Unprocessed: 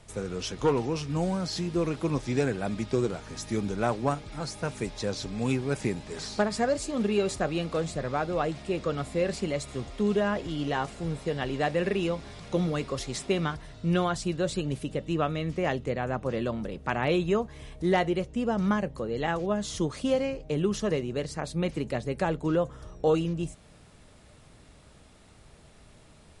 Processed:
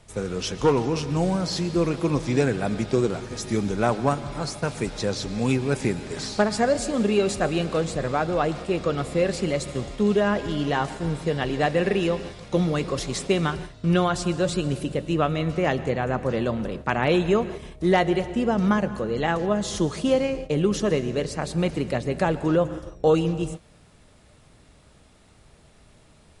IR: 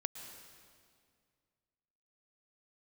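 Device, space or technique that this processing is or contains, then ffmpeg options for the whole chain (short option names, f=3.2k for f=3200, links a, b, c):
keyed gated reverb: -filter_complex "[0:a]asplit=3[a][b][c];[1:a]atrim=start_sample=2205[d];[b][d]afir=irnorm=-1:irlink=0[e];[c]apad=whole_len=1164278[f];[e][f]sidechaingate=range=-33dB:threshold=-41dB:ratio=16:detection=peak,volume=-1dB[g];[a][g]amix=inputs=2:normalize=0"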